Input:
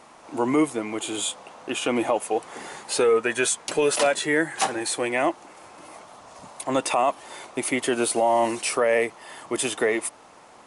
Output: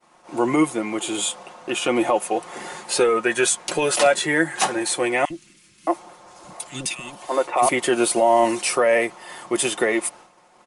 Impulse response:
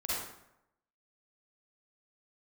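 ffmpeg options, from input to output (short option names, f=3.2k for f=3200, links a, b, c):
-filter_complex "[0:a]agate=range=-33dB:threshold=-42dB:ratio=3:detection=peak,aecho=1:1:5.6:0.49,asettb=1/sr,asplit=3[a][b][c];[a]atrim=end=5.254[d];[b]atrim=start=5.25:end=7.69,asetpts=PTS-STARTPTS,afade=t=in:d=0.004:c=qsin,afade=t=out:st=2.436:d=0.004:c=qsin,acrossover=split=270|2100[e][f][g];[e]adelay=50[h];[f]adelay=620[i];[h][i][g]amix=inputs=3:normalize=0,atrim=end_sample=107604[j];[c]atrim=start=7.686[k];[d][j]acrossfade=d=0.004:c1=hsin:c2=qsin[l];[l][k]acrossfade=d=0.004:c1=qsin:c2=hsin,volume=2.5dB"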